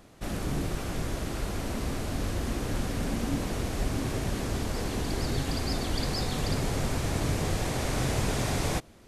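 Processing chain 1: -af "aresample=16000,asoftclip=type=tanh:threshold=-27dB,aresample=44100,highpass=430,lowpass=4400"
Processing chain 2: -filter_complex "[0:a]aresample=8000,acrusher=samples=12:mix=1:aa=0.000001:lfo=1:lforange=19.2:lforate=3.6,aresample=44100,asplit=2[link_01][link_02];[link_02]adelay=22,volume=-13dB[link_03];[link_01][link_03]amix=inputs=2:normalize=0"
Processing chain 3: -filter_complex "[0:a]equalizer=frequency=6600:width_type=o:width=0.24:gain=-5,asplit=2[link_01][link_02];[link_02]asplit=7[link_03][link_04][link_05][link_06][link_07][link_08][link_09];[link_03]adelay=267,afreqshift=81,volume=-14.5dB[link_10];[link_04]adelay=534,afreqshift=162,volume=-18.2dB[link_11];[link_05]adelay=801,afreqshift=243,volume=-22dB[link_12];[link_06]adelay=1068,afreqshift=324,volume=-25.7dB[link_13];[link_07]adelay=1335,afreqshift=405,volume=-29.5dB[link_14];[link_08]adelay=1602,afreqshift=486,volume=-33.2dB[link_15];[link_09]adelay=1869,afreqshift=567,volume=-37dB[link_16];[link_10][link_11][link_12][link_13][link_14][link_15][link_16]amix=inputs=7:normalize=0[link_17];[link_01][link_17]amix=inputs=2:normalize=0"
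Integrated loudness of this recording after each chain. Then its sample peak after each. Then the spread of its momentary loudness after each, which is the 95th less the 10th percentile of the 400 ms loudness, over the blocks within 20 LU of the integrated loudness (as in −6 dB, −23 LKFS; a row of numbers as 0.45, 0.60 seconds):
−39.5, −31.5, −31.0 LKFS; −25.5, −16.0, −15.5 dBFS; 4, 4, 4 LU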